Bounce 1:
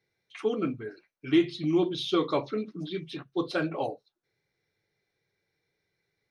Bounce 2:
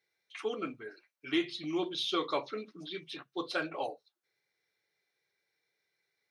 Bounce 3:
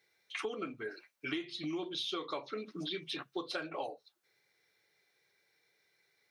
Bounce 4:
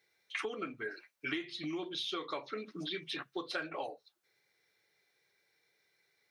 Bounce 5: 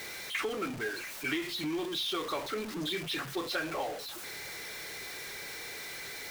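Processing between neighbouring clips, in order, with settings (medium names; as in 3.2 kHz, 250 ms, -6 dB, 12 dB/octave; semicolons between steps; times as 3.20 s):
high-pass 870 Hz 6 dB/octave
compression 8:1, threshold -43 dBFS, peak gain reduction 18 dB; trim +7.5 dB
dynamic bell 1.8 kHz, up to +6 dB, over -58 dBFS, Q 2; trim -1 dB
jump at every zero crossing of -37.5 dBFS; trim +1.5 dB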